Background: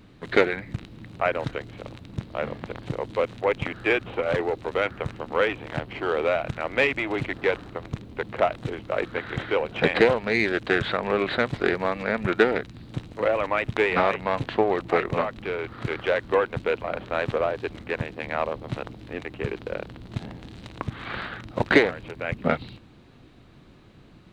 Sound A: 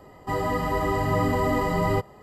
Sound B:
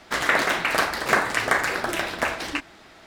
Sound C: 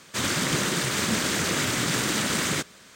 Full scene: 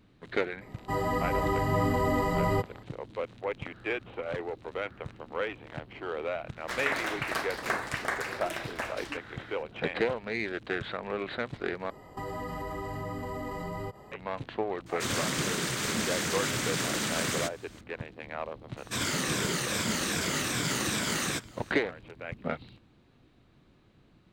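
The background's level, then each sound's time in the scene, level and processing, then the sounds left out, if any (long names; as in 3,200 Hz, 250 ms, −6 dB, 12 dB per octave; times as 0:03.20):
background −10 dB
0:00.61: mix in A −3.5 dB
0:06.57: mix in B −10.5 dB
0:11.90: overwrite with A −1.5 dB + downward compressor, threshold −32 dBFS
0:14.86: mix in C −5.5 dB
0:18.77: mix in C −5.5 dB + rippled gain that drifts along the octave scale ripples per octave 1.7, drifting −2.5 Hz, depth 7 dB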